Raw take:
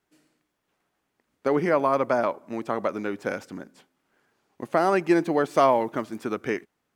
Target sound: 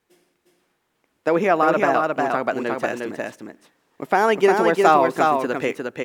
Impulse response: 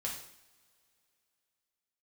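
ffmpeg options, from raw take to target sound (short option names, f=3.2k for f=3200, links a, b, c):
-af "asetrate=50715,aresample=44100,aecho=1:1:356:0.668,volume=4dB"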